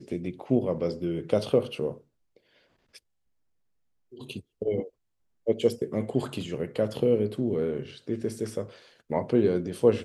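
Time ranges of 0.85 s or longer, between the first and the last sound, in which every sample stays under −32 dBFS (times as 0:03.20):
0:01.92–0:04.30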